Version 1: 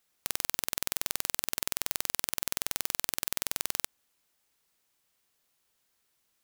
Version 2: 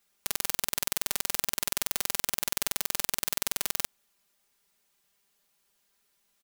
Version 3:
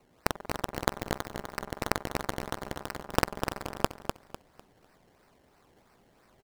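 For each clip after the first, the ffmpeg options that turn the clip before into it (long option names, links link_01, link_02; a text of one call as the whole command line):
ffmpeg -i in.wav -af "aecho=1:1:5:0.85" out.wav
ffmpeg -i in.wav -filter_complex "[0:a]asoftclip=type=tanh:threshold=-11.5dB,acrossover=split=1300[link_01][link_02];[link_02]acrusher=samples=25:mix=1:aa=0.000001:lfo=1:lforange=25:lforate=3[link_03];[link_01][link_03]amix=inputs=2:normalize=0,aecho=1:1:250|500|750|1000:0.473|0.132|0.0371|0.0104,volume=8.5dB" out.wav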